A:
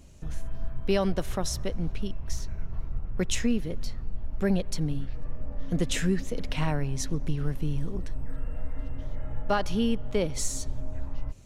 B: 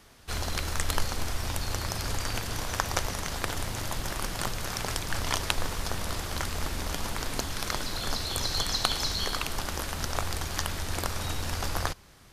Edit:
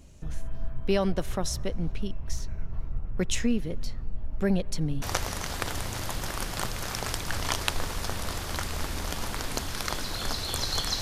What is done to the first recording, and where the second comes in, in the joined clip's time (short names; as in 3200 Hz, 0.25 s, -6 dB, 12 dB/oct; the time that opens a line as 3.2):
A
5.02 switch to B from 2.84 s